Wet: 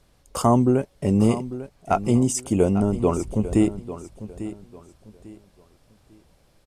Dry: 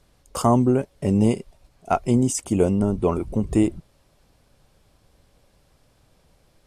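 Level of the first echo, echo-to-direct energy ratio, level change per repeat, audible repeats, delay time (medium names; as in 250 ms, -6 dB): -13.5 dB, -13.0 dB, -11.0 dB, 2, 847 ms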